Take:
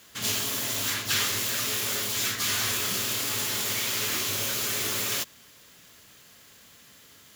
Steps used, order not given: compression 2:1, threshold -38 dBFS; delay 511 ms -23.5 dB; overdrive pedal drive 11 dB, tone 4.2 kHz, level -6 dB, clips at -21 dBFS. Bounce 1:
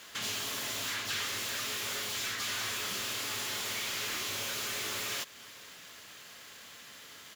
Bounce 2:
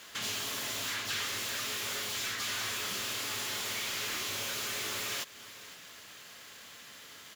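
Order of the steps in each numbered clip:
overdrive pedal > compression > delay; overdrive pedal > delay > compression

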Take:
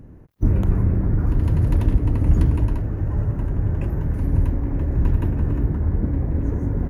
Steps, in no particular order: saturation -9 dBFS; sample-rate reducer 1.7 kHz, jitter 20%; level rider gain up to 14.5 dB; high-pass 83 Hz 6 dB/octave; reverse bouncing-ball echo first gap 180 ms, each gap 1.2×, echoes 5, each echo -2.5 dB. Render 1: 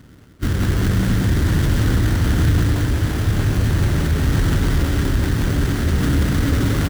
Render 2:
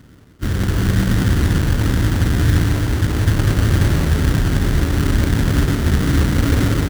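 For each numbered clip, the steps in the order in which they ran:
sample-rate reducer > reverse bouncing-ball echo > level rider > high-pass > saturation; level rider > saturation > reverse bouncing-ball echo > sample-rate reducer > high-pass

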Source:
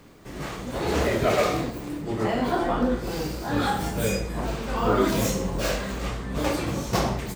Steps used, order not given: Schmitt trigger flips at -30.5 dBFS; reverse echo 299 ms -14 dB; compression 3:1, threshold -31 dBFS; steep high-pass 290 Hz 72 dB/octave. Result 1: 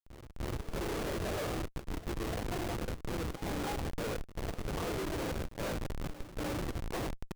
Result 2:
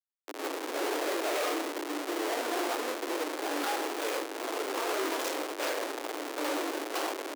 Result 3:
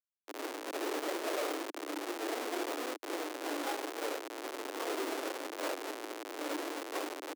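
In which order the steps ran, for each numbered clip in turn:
compression > steep high-pass > Schmitt trigger > reverse echo; reverse echo > Schmitt trigger > compression > steep high-pass; compression > reverse echo > Schmitt trigger > steep high-pass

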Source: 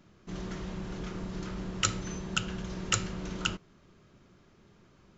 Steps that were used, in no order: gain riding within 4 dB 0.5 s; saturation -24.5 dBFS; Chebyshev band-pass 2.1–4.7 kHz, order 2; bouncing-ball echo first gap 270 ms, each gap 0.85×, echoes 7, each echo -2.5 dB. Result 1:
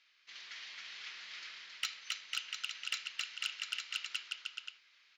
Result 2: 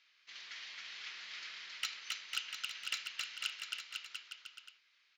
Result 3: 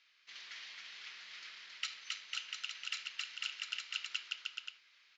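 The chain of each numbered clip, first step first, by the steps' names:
bouncing-ball echo > gain riding > Chebyshev band-pass > saturation; Chebyshev band-pass > saturation > gain riding > bouncing-ball echo; bouncing-ball echo > saturation > gain riding > Chebyshev band-pass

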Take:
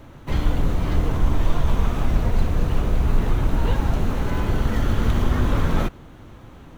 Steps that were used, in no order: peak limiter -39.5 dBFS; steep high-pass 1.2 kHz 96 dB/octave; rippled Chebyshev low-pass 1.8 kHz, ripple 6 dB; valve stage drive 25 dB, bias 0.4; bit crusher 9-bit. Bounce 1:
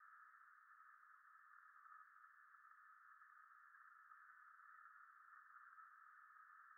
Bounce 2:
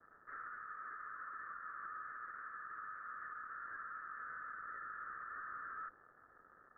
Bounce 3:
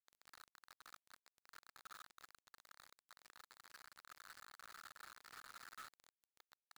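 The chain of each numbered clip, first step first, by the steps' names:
peak limiter > bit crusher > steep high-pass > valve stage > rippled Chebyshev low-pass; steep high-pass > valve stage > bit crusher > rippled Chebyshev low-pass > peak limiter; rippled Chebyshev low-pass > valve stage > peak limiter > steep high-pass > bit crusher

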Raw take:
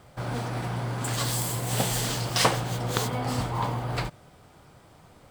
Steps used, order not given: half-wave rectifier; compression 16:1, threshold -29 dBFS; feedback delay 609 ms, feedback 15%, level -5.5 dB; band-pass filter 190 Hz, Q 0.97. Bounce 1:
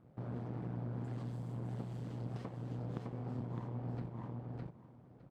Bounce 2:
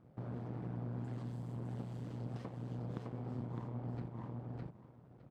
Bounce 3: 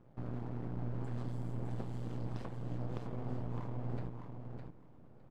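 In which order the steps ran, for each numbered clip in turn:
half-wave rectifier > feedback delay > compression > band-pass filter; feedback delay > compression > half-wave rectifier > band-pass filter; compression > band-pass filter > half-wave rectifier > feedback delay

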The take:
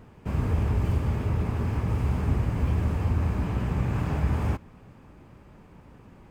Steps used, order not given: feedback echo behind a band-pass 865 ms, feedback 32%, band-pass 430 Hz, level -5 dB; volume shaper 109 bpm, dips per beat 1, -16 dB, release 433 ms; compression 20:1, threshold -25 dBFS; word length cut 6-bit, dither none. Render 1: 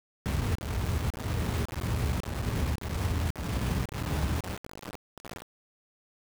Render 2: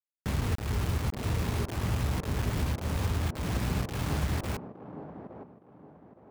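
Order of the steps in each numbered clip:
compression > feedback echo behind a band-pass > volume shaper > word length cut; volume shaper > compression > word length cut > feedback echo behind a band-pass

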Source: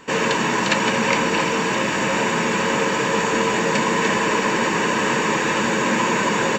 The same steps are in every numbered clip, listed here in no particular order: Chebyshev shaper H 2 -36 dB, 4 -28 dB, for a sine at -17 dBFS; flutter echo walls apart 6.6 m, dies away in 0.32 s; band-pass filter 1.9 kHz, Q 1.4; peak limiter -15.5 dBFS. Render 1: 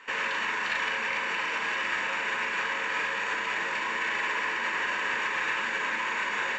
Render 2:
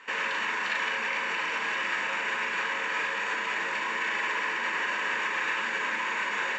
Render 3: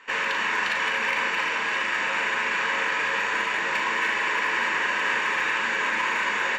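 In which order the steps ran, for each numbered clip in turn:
flutter echo > peak limiter > band-pass filter > Chebyshev shaper; flutter echo > peak limiter > Chebyshev shaper > band-pass filter; band-pass filter > peak limiter > Chebyshev shaper > flutter echo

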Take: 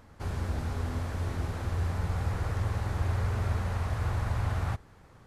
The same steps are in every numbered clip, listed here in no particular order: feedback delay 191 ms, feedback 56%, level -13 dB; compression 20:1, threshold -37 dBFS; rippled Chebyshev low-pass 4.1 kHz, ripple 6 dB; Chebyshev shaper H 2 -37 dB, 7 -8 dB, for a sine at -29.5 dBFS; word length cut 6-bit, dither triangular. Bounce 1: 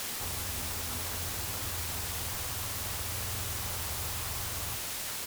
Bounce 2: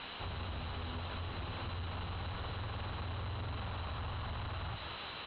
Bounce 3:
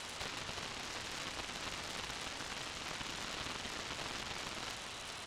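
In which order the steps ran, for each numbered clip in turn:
rippled Chebyshev low-pass > compression > feedback delay > word length cut > Chebyshev shaper; word length cut > feedback delay > Chebyshev shaper > rippled Chebyshev low-pass > compression; compression > feedback delay > word length cut > rippled Chebyshev low-pass > Chebyshev shaper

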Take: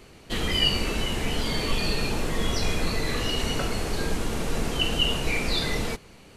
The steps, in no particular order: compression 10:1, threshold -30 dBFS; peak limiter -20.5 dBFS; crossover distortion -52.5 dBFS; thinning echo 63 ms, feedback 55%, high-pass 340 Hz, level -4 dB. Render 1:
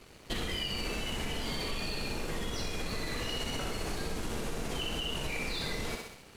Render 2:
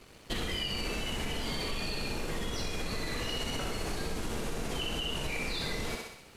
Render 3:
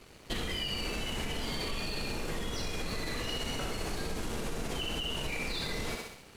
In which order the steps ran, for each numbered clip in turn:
peak limiter > thinning echo > compression > crossover distortion; crossover distortion > peak limiter > thinning echo > compression; thinning echo > peak limiter > compression > crossover distortion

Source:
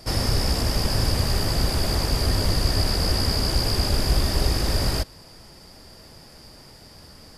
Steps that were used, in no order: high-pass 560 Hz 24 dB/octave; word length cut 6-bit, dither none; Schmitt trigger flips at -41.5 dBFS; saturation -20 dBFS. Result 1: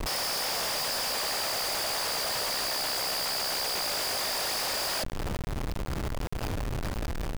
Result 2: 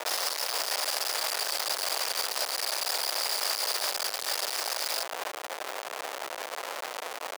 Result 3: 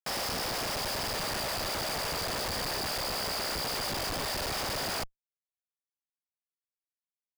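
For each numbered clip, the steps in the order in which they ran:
high-pass > Schmitt trigger > word length cut > saturation; saturation > Schmitt trigger > word length cut > high-pass; saturation > high-pass > word length cut > Schmitt trigger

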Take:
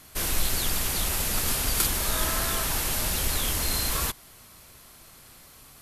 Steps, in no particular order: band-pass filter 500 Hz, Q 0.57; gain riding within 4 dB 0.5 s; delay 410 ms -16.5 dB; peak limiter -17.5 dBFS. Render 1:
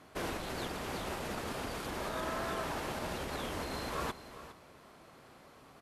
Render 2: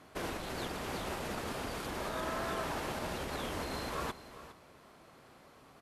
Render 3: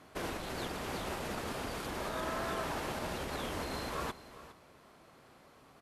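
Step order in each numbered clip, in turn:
delay > peak limiter > gain riding > band-pass filter; delay > gain riding > peak limiter > band-pass filter; gain riding > delay > peak limiter > band-pass filter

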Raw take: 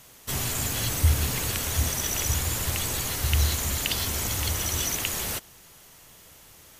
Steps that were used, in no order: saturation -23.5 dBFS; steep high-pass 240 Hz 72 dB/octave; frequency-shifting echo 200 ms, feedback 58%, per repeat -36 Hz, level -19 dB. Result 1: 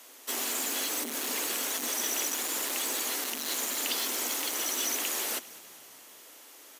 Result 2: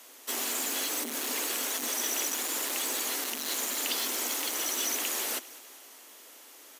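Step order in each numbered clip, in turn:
saturation > steep high-pass > frequency-shifting echo; saturation > frequency-shifting echo > steep high-pass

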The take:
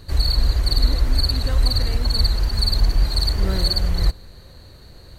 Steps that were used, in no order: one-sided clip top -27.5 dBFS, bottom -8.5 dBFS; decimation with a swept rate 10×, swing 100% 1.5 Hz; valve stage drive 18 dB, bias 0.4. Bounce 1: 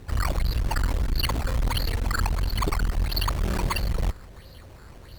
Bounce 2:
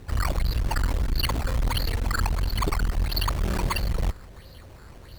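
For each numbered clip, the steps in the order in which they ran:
decimation with a swept rate > one-sided clip > valve stage; one-sided clip > decimation with a swept rate > valve stage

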